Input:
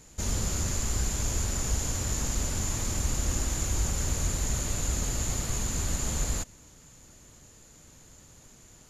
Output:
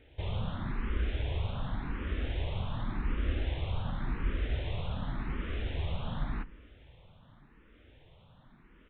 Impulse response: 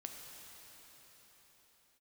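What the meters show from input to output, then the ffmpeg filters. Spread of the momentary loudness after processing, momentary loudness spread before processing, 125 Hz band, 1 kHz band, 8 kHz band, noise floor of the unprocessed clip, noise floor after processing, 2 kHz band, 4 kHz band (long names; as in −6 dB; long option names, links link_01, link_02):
4 LU, 1 LU, −3.0 dB, −2.5 dB, below −40 dB, −54 dBFS, −60 dBFS, −3.0 dB, −8.0 dB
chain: -filter_complex "[0:a]aresample=8000,aresample=44100,asplit=2[link_01][link_02];[1:a]atrim=start_sample=2205,adelay=28[link_03];[link_02][link_03]afir=irnorm=-1:irlink=0,volume=-14.5dB[link_04];[link_01][link_04]amix=inputs=2:normalize=0,asplit=2[link_05][link_06];[link_06]afreqshift=0.89[link_07];[link_05][link_07]amix=inputs=2:normalize=1"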